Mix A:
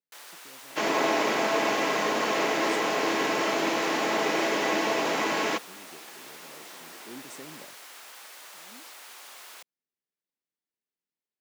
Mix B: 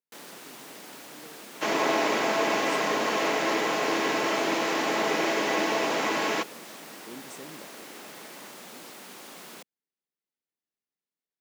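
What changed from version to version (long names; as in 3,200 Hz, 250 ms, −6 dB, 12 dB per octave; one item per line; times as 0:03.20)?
first sound: remove high-pass filter 820 Hz 12 dB per octave
second sound: entry +0.85 s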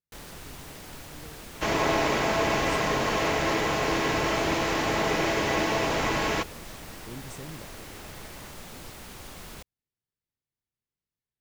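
master: remove high-pass filter 210 Hz 24 dB per octave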